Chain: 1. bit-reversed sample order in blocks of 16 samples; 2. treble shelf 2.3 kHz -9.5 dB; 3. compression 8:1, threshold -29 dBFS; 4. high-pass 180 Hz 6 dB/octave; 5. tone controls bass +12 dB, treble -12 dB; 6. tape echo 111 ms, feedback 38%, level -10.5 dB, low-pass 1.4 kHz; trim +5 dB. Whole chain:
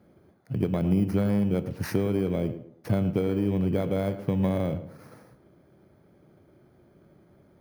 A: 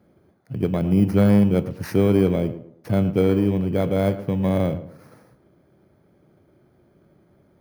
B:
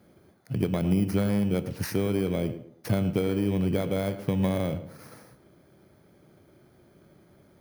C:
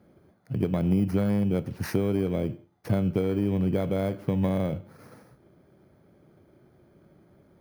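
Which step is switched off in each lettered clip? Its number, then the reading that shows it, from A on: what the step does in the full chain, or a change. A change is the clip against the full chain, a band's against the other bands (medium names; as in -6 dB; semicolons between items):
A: 3, mean gain reduction 4.5 dB; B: 2, 4 kHz band +5.5 dB; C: 6, echo-to-direct -24.5 dB to none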